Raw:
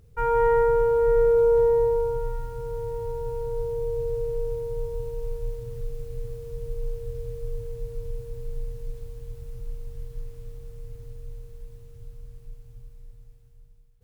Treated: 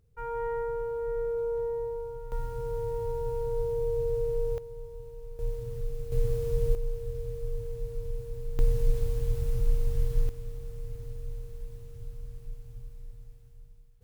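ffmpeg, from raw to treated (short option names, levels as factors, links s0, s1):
-af "asetnsamples=n=441:p=0,asendcmd='2.32 volume volume -1dB;4.58 volume volume -11.5dB;5.39 volume volume -1dB;6.12 volume volume 7dB;6.75 volume volume -1.5dB;8.59 volume volume 9.5dB;10.29 volume volume 1.5dB',volume=0.251"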